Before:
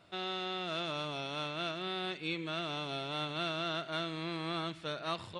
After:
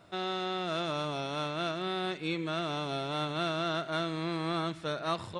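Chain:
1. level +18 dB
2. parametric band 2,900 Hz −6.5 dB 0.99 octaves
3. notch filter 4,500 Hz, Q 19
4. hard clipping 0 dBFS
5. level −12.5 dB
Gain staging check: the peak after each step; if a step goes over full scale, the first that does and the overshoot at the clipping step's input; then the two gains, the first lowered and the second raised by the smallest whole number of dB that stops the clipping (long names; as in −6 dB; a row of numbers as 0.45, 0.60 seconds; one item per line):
−4.5, −6.0, −6.0, −6.0, −18.5 dBFS
no step passes full scale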